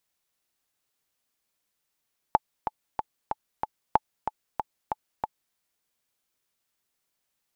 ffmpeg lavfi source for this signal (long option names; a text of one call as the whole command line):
ffmpeg -f lavfi -i "aevalsrc='pow(10,(-5-9*gte(mod(t,5*60/187),60/187))/20)*sin(2*PI*864*mod(t,60/187))*exp(-6.91*mod(t,60/187)/0.03)':duration=3.2:sample_rate=44100" out.wav